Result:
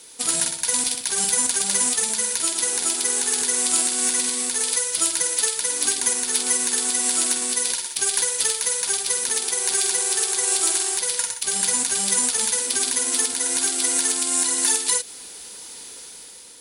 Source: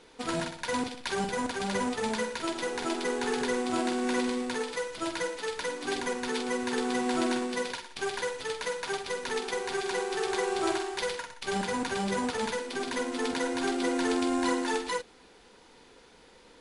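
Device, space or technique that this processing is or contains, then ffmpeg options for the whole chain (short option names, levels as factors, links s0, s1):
FM broadcast chain: -filter_complex "[0:a]highpass=45,dynaudnorm=f=190:g=7:m=2,acrossover=split=800|1700[s0][s1][s2];[s0]acompressor=threshold=0.0251:ratio=4[s3];[s1]acompressor=threshold=0.0141:ratio=4[s4];[s2]acompressor=threshold=0.02:ratio=4[s5];[s3][s4][s5]amix=inputs=3:normalize=0,aemphasis=mode=production:type=75fm,alimiter=limit=0.158:level=0:latency=1:release=210,asoftclip=type=hard:threshold=0.119,lowpass=f=15000:w=0.5412,lowpass=f=15000:w=1.3066,aemphasis=mode=production:type=75fm"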